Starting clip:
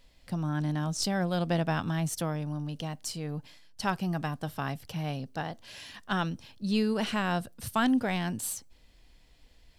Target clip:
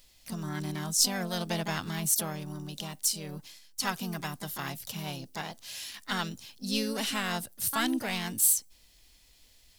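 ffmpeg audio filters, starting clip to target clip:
-filter_complex "[0:a]crystalizer=i=5.5:c=0,asplit=2[a][b];[b]asetrate=55563,aresample=44100,atempo=0.793701,volume=-5dB[c];[a][c]amix=inputs=2:normalize=0,volume=-6.5dB"

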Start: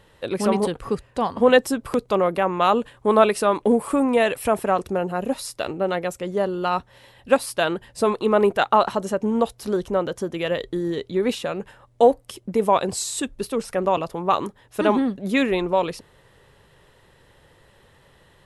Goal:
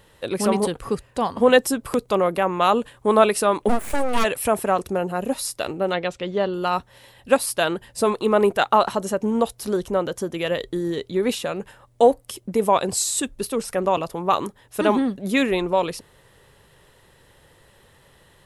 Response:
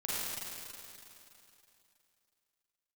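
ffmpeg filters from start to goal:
-filter_complex "[0:a]crystalizer=i=1:c=0,asplit=3[a][b][c];[a]afade=t=out:st=3.68:d=0.02[d];[b]aeval=exprs='abs(val(0))':c=same,afade=t=in:st=3.68:d=0.02,afade=t=out:st=4.23:d=0.02[e];[c]afade=t=in:st=4.23:d=0.02[f];[d][e][f]amix=inputs=3:normalize=0,asettb=1/sr,asplit=3[g][h][i];[g]atrim=end=5.934[j];[h]atrim=start=5.93:end=6.54,asetpts=PTS-STARTPTS,afade=t=in:d=0.004:c=qsin,afade=t=out:st=0.606:d=0.004:c=qsin,lowpass=f=3.6k:t=q:w=2[k];[i]atrim=start=6.536[l];[j][k]acrossfade=d=0.004:c1=hsin:c2=qsin[m];[m][l]acrossfade=d=0.004:c1=qsin:c2=hsin"

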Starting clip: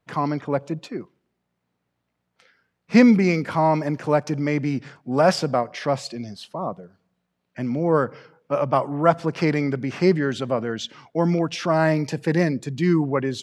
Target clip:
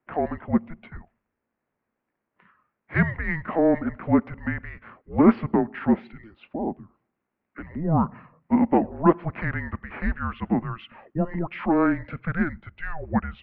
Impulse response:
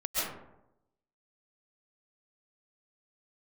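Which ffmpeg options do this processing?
-af "highpass=f=460:t=q:w=0.5412,highpass=f=460:t=q:w=1.307,lowpass=f=2.7k:t=q:w=0.5176,lowpass=f=2.7k:t=q:w=0.7071,lowpass=f=2.7k:t=q:w=1.932,afreqshift=-330,equalizer=f=230:t=o:w=0.37:g=6"

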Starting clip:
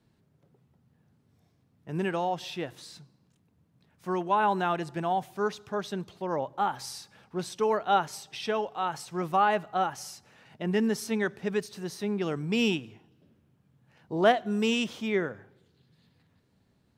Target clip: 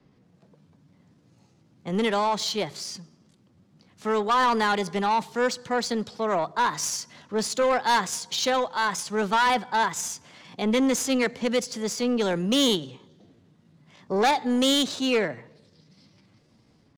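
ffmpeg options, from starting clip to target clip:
-filter_complex "[0:a]acrossover=split=370|510|3600[a][b][c][d];[d]dynaudnorm=f=170:g=3:m=12dB[e];[a][b][c][e]amix=inputs=4:normalize=0,asetrate=52444,aresample=44100,atempo=0.840896,asoftclip=type=tanh:threshold=-24.5dB,adynamicsmooth=sensitivity=4:basefreq=5.1k,volume=7.5dB"

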